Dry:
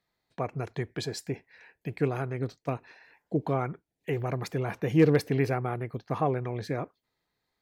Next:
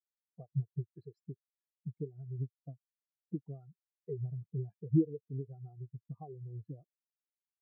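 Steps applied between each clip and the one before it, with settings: compression 12:1, threshold -34 dBFS, peak gain reduction 19.5 dB; spectral contrast expander 4:1; trim +3.5 dB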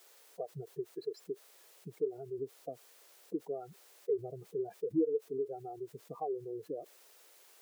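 ladder high-pass 380 Hz, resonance 50%; level flattener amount 50%; trim +9 dB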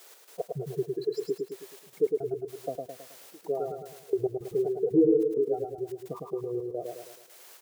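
trance gate "x.x.xx.xxx.xx." 109 bpm -24 dB; on a send: feedback delay 107 ms, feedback 48%, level -3.5 dB; on the sum: trim +8.5 dB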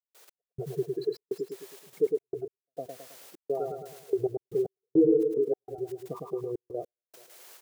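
trance gate ".x..xxxx.xxxxxx" 103 bpm -60 dB

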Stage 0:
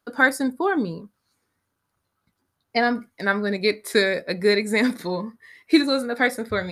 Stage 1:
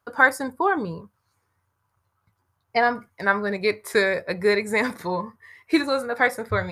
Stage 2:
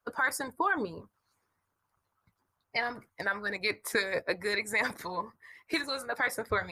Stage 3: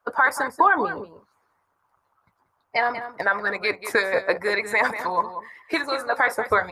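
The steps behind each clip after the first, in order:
fifteen-band graphic EQ 100 Hz +11 dB, 250 Hz -9 dB, 1 kHz +7 dB, 4 kHz -6 dB, 10 kHz -3 dB
harmonic-percussive split harmonic -15 dB; peak limiter -18 dBFS, peak gain reduction 10 dB
peaking EQ 870 Hz +13 dB 2.6 oct; echo from a far wall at 32 m, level -11 dB

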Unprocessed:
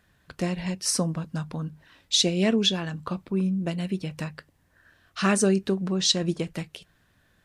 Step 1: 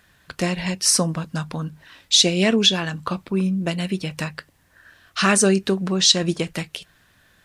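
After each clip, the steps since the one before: tilt shelf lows -3.5 dB, about 810 Hz; in parallel at +1.5 dB: peak limiter -15.5 dBFS, peak gain reduction 9.5 dB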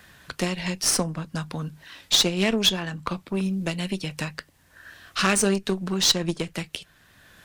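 Chebyshev shaper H 4 -16 dB, 6 -16 dB, 7 -26 dB, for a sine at -2.5 dBFS; wow and flutter 27 cents; three bands compressed up and down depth 40%; trim -2 dB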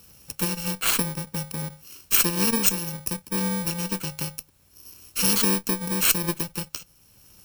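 bit-reversed sample order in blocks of 64 samples

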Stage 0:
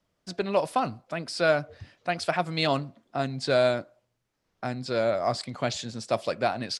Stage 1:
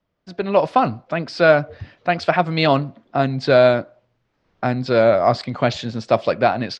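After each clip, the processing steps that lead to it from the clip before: distance through air 190 m; level rider gain up to 11.5 dB; trim +1 dB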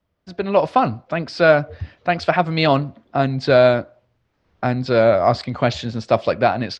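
peaking EQ 75 Hz +11 dB 0.55 oct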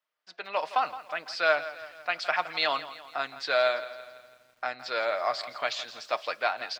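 high-pass 1.1 kHz 12 dB/octave; comb 6.5 ms, depth 32%; bit-crushed delay 166 ms, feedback 55%, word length 8-bit, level -14.5 dB; trim -4.5 dB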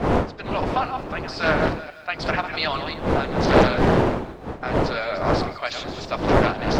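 chunks repeated in reverse 173 ms, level -8 dB; wind noise 570 Hz -25 dBFS; loudspeaker Doppler distortion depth 0.66 ms; trim +2 dB

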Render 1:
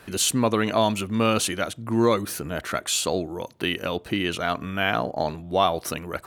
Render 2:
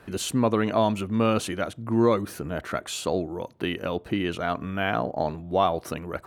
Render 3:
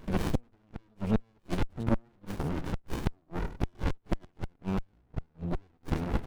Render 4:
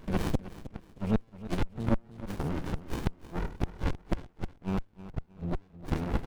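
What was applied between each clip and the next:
treble shelf 2.2 kHz -10.5 dB
delay 100 ms -13 dB; inverted gate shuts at -16 dBFS, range -41 dB; sliding maximum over 65 samples; trim +5.5 dB
feedback delay 313 ms, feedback 30%, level -15 dB

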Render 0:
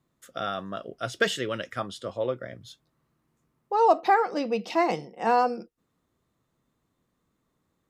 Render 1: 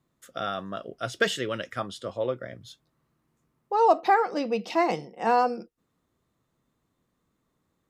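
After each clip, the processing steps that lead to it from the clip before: no audible change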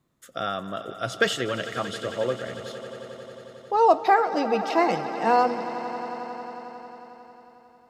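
echo with a slow build-up 90 ms, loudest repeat 5, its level -17 dB; trim +2 dB

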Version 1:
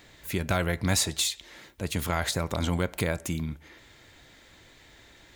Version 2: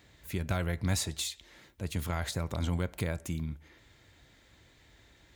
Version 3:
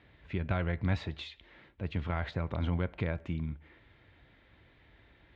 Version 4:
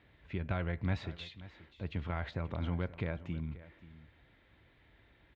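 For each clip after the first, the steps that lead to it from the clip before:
high-pass 44 Hz; bass shelf 140 Hz +9.5 dB; trim -8 dB
low-pass 3.1 kHz 24 dB/octave
delay 531 ms -17 dB; trim -3.5 dB

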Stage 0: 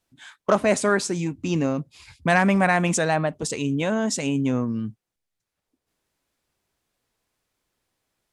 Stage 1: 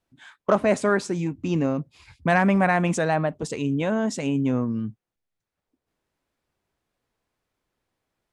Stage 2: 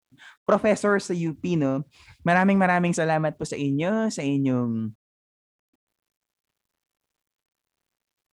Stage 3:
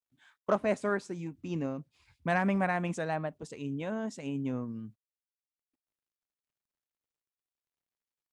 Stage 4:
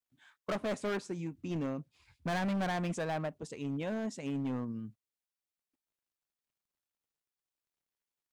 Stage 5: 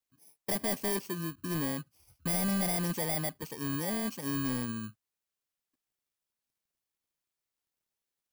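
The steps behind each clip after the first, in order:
treble shelf 3.3 kHz -10 dB
word length cut 12-bit, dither none
upward expansion 1.5:1, over -30 dBFS; trim -7 dB
overload inside the chain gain 30.5 dB
bit-reversed sample order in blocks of 32 samples; trim +2.5 dB

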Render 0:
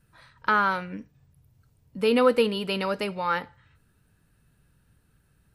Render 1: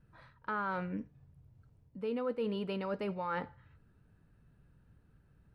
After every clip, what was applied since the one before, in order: low-pass 1 kHz 6 dB/octave; reverse; compression 6:1, threshold -33 dBFS, peak gain reduction 16 dB; reverse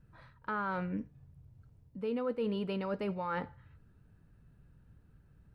bass shelf 190 Hz +4.5 dB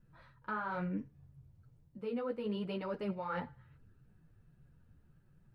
chorus voices 4, 1 Hz, delay 10 ms, depth 4.6 ms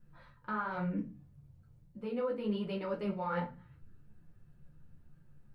simulated room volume 120 m³, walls furnished, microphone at 0.87 m

